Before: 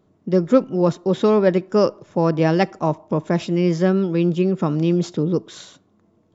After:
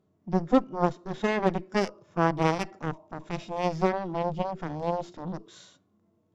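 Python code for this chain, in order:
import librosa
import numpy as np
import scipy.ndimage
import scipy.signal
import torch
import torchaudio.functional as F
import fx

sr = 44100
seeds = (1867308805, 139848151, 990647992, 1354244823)

y = fx.cheby_harmonics(x, sr, harmonics=(2, 3, 7), levels_db=(-12, -22, -13), full_scale_db=-2.5)
y = fx.hpss(y, sr, part='percussive', gain_db=-13)
y = y * 10.0 ** (-4.5 / 20.0)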